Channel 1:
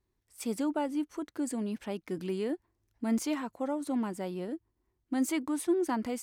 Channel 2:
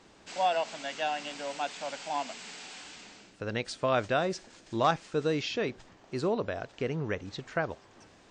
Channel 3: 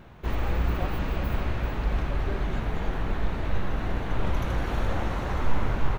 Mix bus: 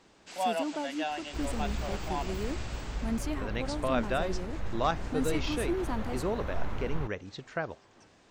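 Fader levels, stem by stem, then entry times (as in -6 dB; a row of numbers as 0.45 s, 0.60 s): -4.0 dB, -3.0 dB, -9.0 dB; 0.00 s, 0.00 s, 1.10 s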